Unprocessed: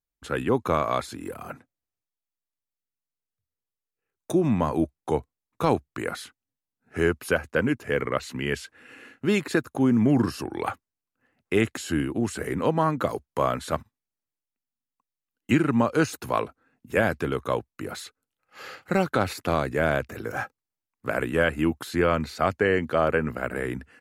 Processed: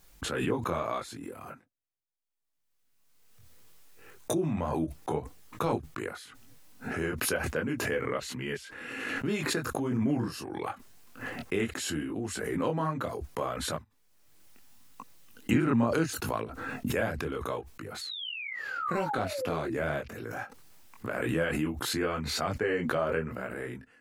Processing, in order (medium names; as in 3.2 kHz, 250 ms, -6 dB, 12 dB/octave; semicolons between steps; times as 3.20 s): painted sound fall, 18.01–19.75 s, 310–4500 Hz -30 dBFS; chorus voices 4, 0.72 Hz, delay 22 ms, depth 4.4 ms; swell ahead of each attack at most 29 dB/s; trim -5.5 dB